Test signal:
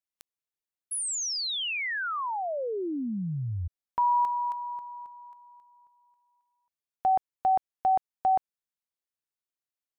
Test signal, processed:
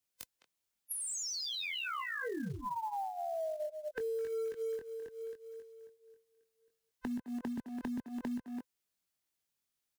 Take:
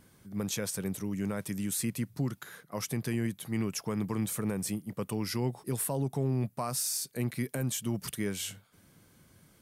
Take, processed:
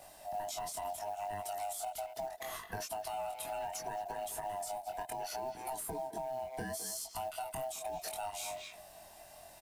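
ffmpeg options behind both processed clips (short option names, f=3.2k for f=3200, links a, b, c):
-filter_complex "[0:a]afftfilt=real='real(if(lt(b,1008),b+24*(1-2*mod(floor(b/24),2)),b),0)':imag='imag(if(lt(b,1008),b+24*(1-2*mod(floor(b/24),2)),b),0)':win_size=2048:overlap=0.75,asplit=2[a][b];[b]adelay=210,highpass=300,lowpass=3.4k,asoftclip=type=hard:threshold=-27.5dB,volume=-12dB[c];[a][c]amix=inputs=2:normalize=0,flanger=delay=19.5:depth=4.1:speed=0.7,acrossover=split=120|1100[d][e][f];[d]acompressor=threshold=-56dB:ratio=6[g];[e]acompressor=threshold=-31dB:ratio=4[h];[f]acompressor=threshold=-44dB:ratio=6[i];[g][h][i]amix=inputs=3:normalize=0,equalizer=f=990:t=o:w=2.8:g=-4.5,acompressor=threshold=-45dB:ratio=16:attack=1.7:release=430:knee=1:detection=peak,acrusher=bits=6:mode=log:mix=0:aa=0.000001,volume=11.5dB"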